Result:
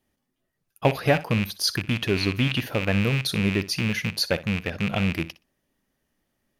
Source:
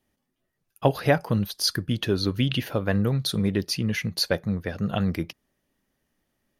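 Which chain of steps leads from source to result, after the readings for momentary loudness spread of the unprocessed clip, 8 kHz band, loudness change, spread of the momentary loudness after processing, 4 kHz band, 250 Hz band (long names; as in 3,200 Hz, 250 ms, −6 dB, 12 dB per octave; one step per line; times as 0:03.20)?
5 LU, +0.5 dB, +1.0 dB, 4 LU, +1.0 dB, 0.0 dB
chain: loose part that buzzes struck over −28 dBFS, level −17 dBFS
flutter between parallel walls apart 10.5 metres, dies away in 0.22 s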